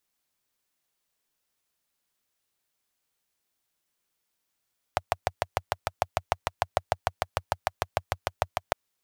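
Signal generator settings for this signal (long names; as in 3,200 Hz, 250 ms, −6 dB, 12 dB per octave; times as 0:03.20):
pulse-train model of a single-cylinder engine, steady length 3.76 s, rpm 800, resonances 91/700 Hz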